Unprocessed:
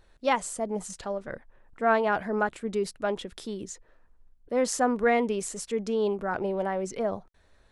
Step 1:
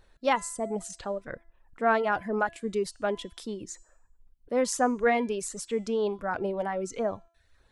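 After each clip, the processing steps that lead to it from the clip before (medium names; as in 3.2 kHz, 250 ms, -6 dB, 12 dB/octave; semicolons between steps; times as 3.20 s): reverb removal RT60 0.63 s; de-hum 337.1 Hz, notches 26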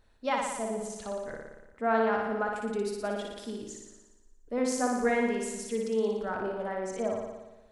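flutter echo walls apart 10 m, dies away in 1.1 s; on a send at -14 dB: reverberation RT60 0.15 s, pre-delay 3 ms; on the sum: trim -5.5 dB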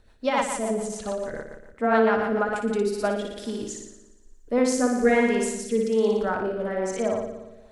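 rotary cabinet horn 7 Hz, later 1.2 Hz, at 2.32 s; trim +9 dB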